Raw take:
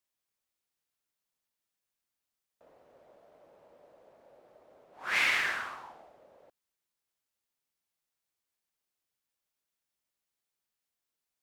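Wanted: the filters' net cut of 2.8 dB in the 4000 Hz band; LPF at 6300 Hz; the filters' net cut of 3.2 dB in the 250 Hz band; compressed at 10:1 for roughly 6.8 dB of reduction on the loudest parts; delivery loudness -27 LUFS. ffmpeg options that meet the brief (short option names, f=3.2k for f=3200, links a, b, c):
-af "lowpass=6.3k,equalizer=f=250:t=o:g=-4.5,equalizer=f=4k:t=o:g=-3.5,acompressor=threshold=-31dB:ratio=10,volume=9dB"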